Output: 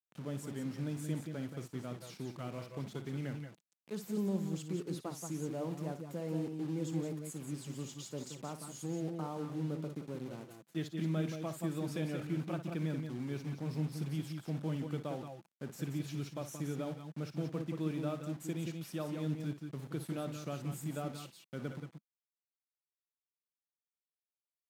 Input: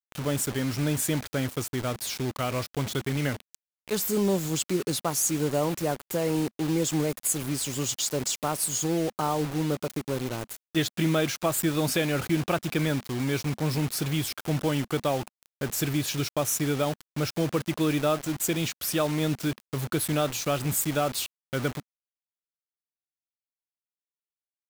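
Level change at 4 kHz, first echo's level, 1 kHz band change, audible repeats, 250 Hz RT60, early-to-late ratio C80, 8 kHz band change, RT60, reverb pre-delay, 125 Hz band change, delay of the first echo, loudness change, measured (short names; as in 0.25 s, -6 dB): -19.0 dB, -11.5 dB, -15.5 dB, 2, none, none, -21.5 dB, none, none, -8.5 dB, 57 ms, -12.0 dB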